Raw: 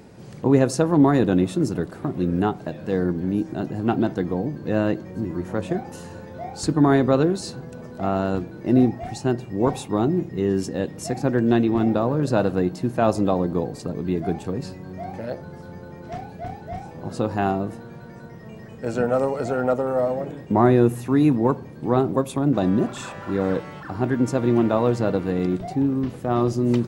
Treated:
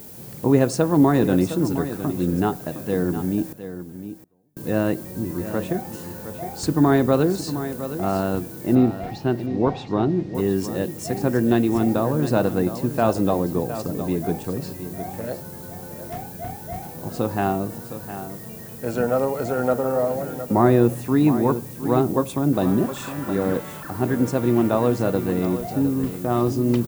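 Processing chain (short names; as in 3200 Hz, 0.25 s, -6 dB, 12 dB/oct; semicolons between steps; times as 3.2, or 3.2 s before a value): added noise violet -42 dBFS; 3.5–4.57 flipped gate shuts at -22 dBFS, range -40 dB; 8.75–10.35 LPF 4600 Hz 24 dB/oct; echo 0.712 s -11.5 dB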